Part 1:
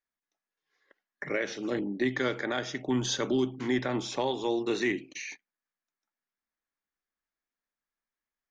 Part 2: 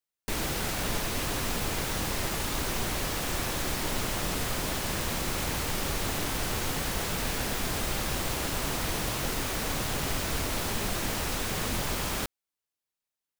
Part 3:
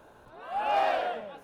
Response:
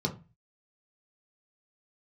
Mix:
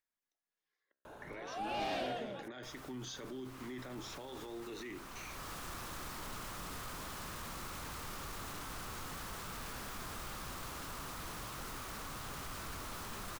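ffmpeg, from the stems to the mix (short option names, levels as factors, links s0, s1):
-filter_complex "[0:a]agate=range=0.0224:threshold=0.00501:ratio=3:detection=peak,bandreject=f=67.47:t=h:w=4,bandreject=f=134.94:t=h:w=4,bandreject=f=202.41:t=h:w=4,bandreject=f=269.88:t=h:w=4,bandreject=f=337.35:t=h:w=4,bandreject=f=404.82:t=h:w=4,bandreject=f=472.29:t=h:w=4,bandreject=f=539.76:t=h:w=4,bandreject=f=607.23:t=h:w=4,bandreject=f=674.7:t=h:w=4,bandreject=f=742.17:t=h:w=4,bandreject=f=809.64:t=h:w=4,bandreject=f=877.11:t=h:w=4,bandreject=f=944.58:t=h:w=4,bandreject=f=1012.05:t=h:w=4,bandreject=f=1079.52:t=h:w=4,bandreject=f=1146.99:t=h:w=4,bandreject=f=1214.46:t=h:w=4,bandreject=f=1281.93:t=h:w=4,bandreject=f=1349.4:t=h:w=4,bandreject=f=1416.87:t=h:w=4,bandreject=f=1484.34:t=h:w=4,bandreject=f=1551.81:t=h:w=4,bandreject=f=1619.28:t=h:w=4,bandreject=f=1686.75:t=h:w=4,bandreject=f=1754.22:t=h:w=4,bandreject=f=1821.69:t=h:w=4,acompressor=mode=upward:threshold=0.00178:ratio=2.5,volume=0.299,asplit=2[s0][s1];[1:a]equalizer=f=1200:w=1.5:g=12,dynaudnorm=f=180:g=13:m=2,asoftclip=type=tanh:threshold=0.15,adelay=2350,volume=0.251[s2];[2:a]asoftclip=type=tanh:threshold=0.0794,adelay=1050,volume=1.33[s3];[s1]apad=whole_len=694138[s4];[s2][s4]sidechaincompress=threshold=0.00178:ratio=4:attack=34:release=761[s5];[s0][s5]amix=inputs=2:normalize=0,alimiter=level_in=4.22:limit=0.0631:level=0:latency=1:release=24,volume=0.237,volume=1[s6];[s3][s6]amix=inputs=2:normalize=0,acrossover=split=380|3000[s7][s8][s9];[s8]acompressor=threshold=0.00398:ratio=2.5[s10];[s7][s10][s9]amix=inputs=3:normalize=0"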